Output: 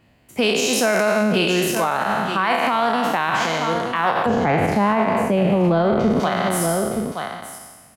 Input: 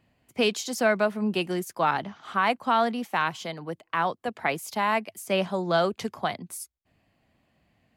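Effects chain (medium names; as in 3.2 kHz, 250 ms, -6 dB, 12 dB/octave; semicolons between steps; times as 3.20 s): spectral sustain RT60 1.37 s; 4.26–6.20 s: tilt EQ -4.5 dB/octave; delay 921 ms -12 dB; loudness maximiser +17 dB; trim -9 dB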